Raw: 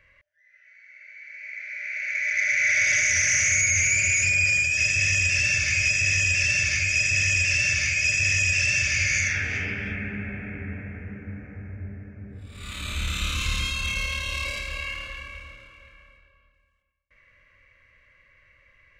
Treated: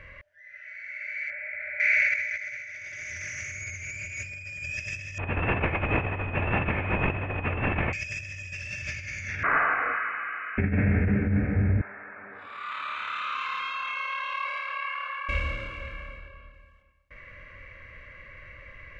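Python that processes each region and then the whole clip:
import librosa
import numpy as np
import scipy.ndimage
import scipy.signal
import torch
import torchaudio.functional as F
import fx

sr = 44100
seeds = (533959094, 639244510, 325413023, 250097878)

y = fx.chain(x, sr, fx.lowpass(hz=1100.0, slope=12),
    fx.peak_eq(hz=120.0, db=-9.0, octaves=0.65),
    fx.env_flatten(amount_pct=70), at=(1.3, 1.8))
y = fx.chain(y, sr, fx.cvsd(bps=16000),
    fx.air_absorb(metres=170.0), at=(5.18, 7.93))
y = fx.chain(y, sr, fx.cheby_ripple_highpass(hz=840.0, ripple_db=9),
    fx.freq_invert(carrier_hz=3800), at=(9.43, 10.58))
y = fx.chain(y, sr, fx.ladder_bandpass(hz=1300.0, resonance_pct=50),
    fx.env_flatten(amount_pct=50), at=(11.81, 15.29))
y = fx.lowpass(y, sr, hz=1500.0, slope=6)
y = fx.over_compress(y, sr, threshold_db=-36.0, ratio=-0.5)
y = y * 10.0 ** (9.0 / 20.0)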